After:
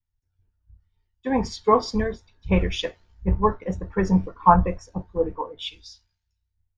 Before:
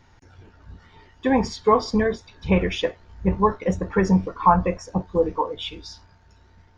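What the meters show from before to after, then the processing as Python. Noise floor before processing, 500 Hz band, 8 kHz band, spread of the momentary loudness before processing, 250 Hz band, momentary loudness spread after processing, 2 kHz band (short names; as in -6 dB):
-55 dBFS, -2.5 dB, n/a, 10 LU, -2.5 dB, 15 LU, -4.0 dB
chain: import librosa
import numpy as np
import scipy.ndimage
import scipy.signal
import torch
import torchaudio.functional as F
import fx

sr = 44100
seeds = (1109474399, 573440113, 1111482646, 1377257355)

y = fx.low_shelf(x, sr, hz=67.0, db=10.0)
y = fx.band_widen(y, sr, depth_pct=100)
y = F.gain(torch.from_numpy(y), -5.0).numpy()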